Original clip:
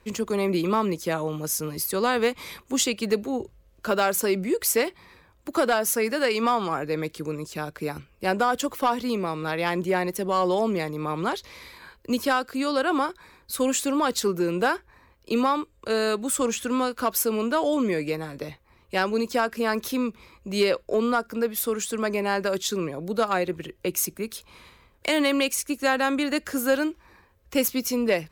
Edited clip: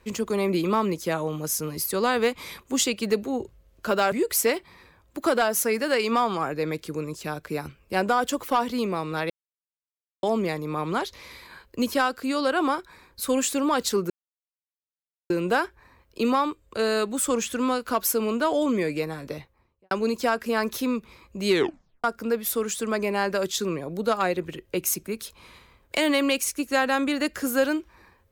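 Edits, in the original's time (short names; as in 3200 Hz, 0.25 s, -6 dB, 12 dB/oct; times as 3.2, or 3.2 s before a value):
4.12–4.43 cut
9.61–10.54 mute
14.41 insert silence 1.20 s
18.41–19.02 studio fade out
20.6 tape stop 0.55 s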